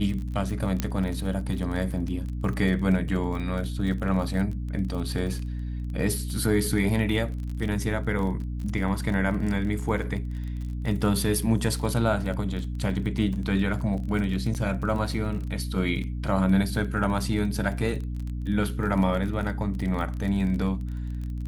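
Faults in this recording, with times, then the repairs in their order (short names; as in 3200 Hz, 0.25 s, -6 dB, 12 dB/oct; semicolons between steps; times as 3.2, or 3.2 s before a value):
crackle 24/s -32 dBFS
hum 60 Hz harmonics 5 -31 dBFS
0.8 pop -11 dBFS
14.54–14.55 gap 8.6 ms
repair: de-click; de-hum 60 Hz, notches 5; interpolate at 14.54, 8.6 ms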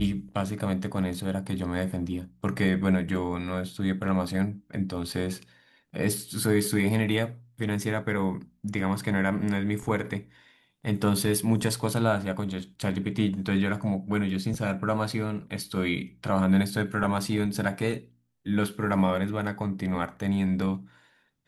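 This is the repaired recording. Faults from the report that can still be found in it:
none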